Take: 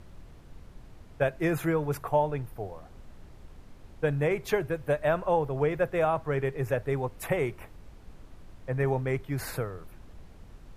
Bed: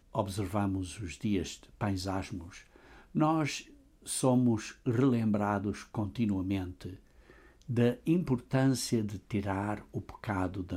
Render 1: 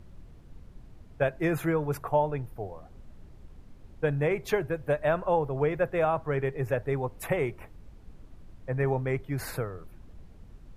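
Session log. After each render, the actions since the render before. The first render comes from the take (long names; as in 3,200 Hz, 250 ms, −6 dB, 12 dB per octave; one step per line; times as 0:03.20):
broadband denoise 6 dB, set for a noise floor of −51 dBFS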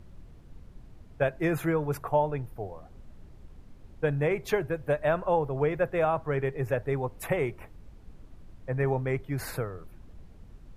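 no processing that can be heard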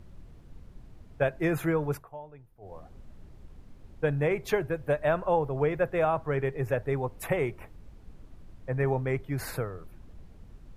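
0:01.91–0:02.76: duck −18 dB, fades 0.15 s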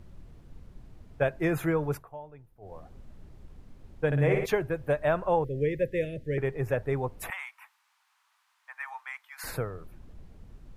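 0:04.06–0:04.46: flutter between parallel walls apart 9.8 metres, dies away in 0.81 s
0:05.44–0:06.38: Chebyshev band-stop filter 550–1,800 Hz, order 4
0:07.30–0:09.44: Butterworth high-pass 900 Hz 48 dB per octave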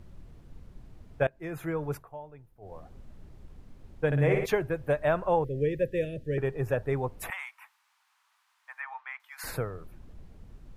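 0:01.27–0:02.16: fade in, from −21 dB
0:05.61–0:06.87: notch filter 2,100 Hz, Q 5.8
0:08.80–0:09.20: low-pass filter 3,100 Hz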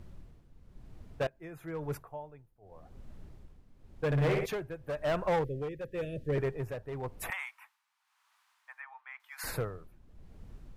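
gain into a clipping stage and back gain 24.5 dB
amplitude tremolo 0.95 Hz, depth 69%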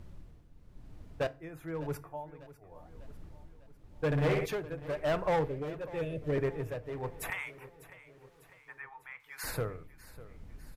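repeating echo 599 ms, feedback 53%, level −17.5 dB
feedback delay network reverb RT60 0.37 s, low-frequency decay 1.5×, high-frequency decay 0.75×, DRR 13.5 dB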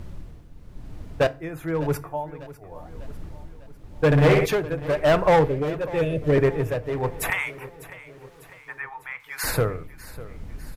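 level +12 dB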